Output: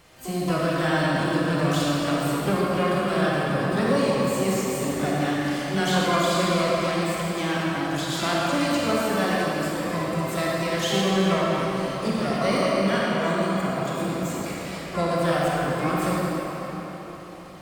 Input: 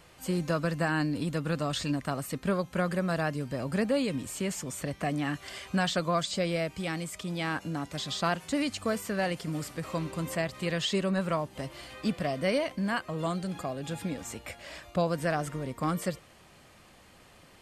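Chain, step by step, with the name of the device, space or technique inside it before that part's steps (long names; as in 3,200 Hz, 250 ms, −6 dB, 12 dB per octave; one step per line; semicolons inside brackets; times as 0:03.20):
shimmer-style reverb (pitch-shifted copies added +12 semitones −7 dB; convolution reverb RT60 4.5 s, pre-delay 27 ms, DRR −6 dB)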